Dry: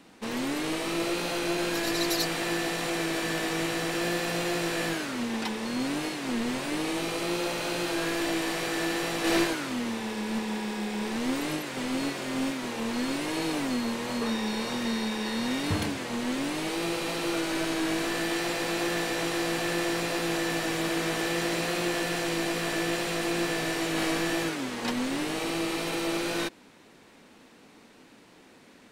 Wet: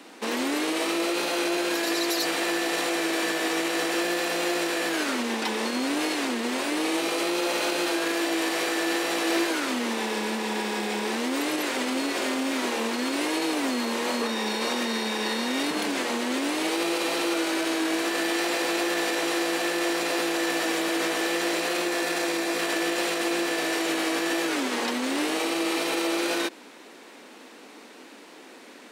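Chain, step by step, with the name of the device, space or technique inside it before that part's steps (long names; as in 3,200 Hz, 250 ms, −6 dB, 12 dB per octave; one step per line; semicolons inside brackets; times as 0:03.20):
clipper into limiter (hard clipping −17.5 dBFS, distortion −37 dB; brickwall limiter −25.5 dBFS, peak gain reduction 8 dB)
0:21.84–0:22.59: notch filter 3,000 Hz, Q 13
high-pass filter 260 Hz 24 dB per octave
level +8.5 dB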